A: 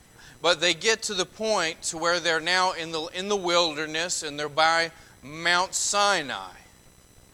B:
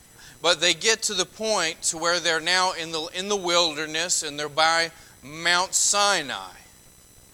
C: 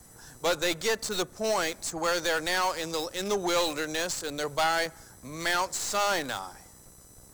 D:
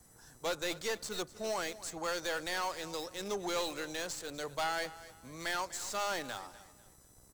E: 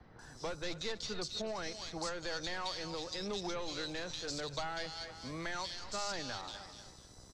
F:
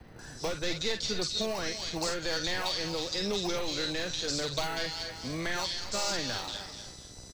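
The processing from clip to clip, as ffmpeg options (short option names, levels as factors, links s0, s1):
-af "highshelf=f=4800:g=8"
-filter_complex "[0:a]acrossover=split=340|1800|4400[s0][s1][s2][s3];[s2]acrusher=bits=3:dc=4:mix=0:aa=0.000001[s4];[s3]acompressor=threshold=0.02:ratio=6[s5];[s0][s1][s4][s5]amix=inputs=4:normalize=0,asoftclip=type=tanh:threshold=0.0944"
-af "aecho=1:1:247|494|741:0.141|0.0466|0.0154,volume=0.376"
-filter_complex "[0:a]acrossover=split=180[s0][s1];[s1]acompressor=threshold=0.00501:ratio=4[s2];[s0][s2]amix=inputs=2:normalize=0,lowpass=f=4800:t=q:w=2.4,acrossover=split=2900[s3][s4];[s4]adelay=190[s5];[s3][s5]amix=inputs=2:normalize=0,volume=2"
-filter_complex "[0:a]acrossover=split=740|1200[s0][s1][s2];[s1]acrusher=samples=25:mix=1:aa=0.000001[s3];[s2]asplit=2[s4][s5];[s5]adelay=48,volume=0.631[s6];[s4][s6]amix=inputs=2:normalize=0[s7];[s0][s3][s7]amix=inputs=3:normalize=0,volume=2.37"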